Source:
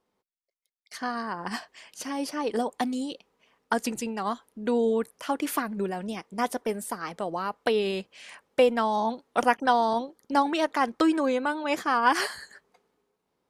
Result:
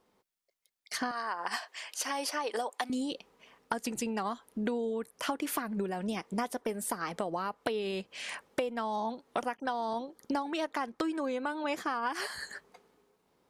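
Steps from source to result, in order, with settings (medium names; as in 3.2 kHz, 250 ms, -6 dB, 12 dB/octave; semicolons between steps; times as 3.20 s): 1.11–2.90 s: high-pass 610 Hz 12 dB/octave; compression 12:1, threshold -36 dBFS, peak gain reduction 21 dB; trim +6 dB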